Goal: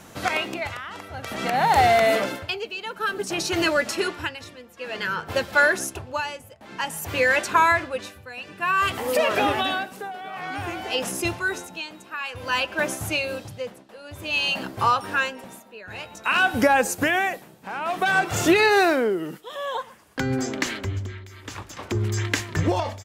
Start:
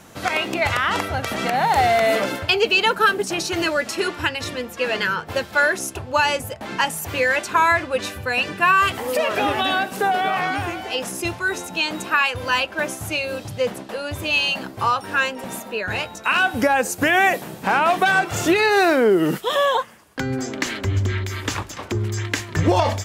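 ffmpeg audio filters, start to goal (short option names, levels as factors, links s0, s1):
-filter_complex "[0:a]asplit=2[s0][s1];[s1]adelay=120,highpass=300,lowpass=3400,asoftclip=type=hard:threshold=0.168,volume=0.0794[s2];[s0][s2]amix=inputs=2:normalize=0,tremolo=f=0.54:d=0.84"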